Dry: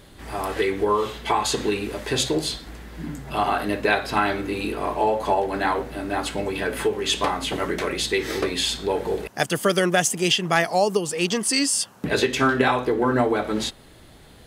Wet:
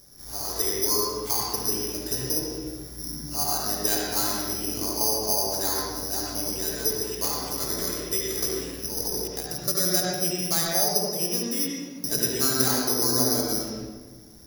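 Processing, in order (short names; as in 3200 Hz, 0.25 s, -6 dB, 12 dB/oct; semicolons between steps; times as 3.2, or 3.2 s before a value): high shelf 2200 Hz -10.5 dB; 8.83–9.68 negative-ratio compressor -26 dBFS, ratio -0.5; careless resampling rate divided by 8×, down filtered, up zero stuff; reverb RT60 1.4 s, pre-delay 71 ms, DRR -3 dB; gain -12.5 dB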